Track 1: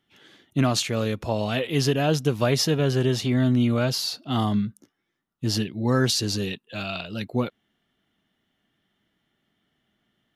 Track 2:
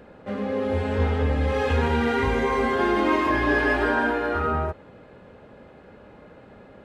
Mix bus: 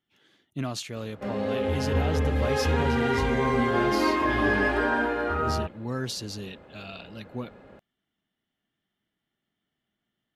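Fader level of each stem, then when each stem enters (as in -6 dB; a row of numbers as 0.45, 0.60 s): -10.0, -2.5 dB; 0.00, 0.95 s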